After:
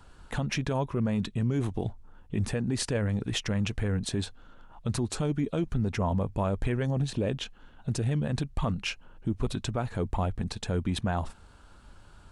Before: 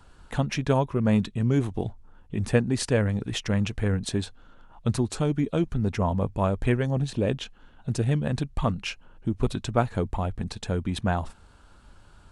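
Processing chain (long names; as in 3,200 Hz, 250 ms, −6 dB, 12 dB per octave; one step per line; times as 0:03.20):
brickwall limiter −19.5 dBFS, peak gain reduction 11.5 dB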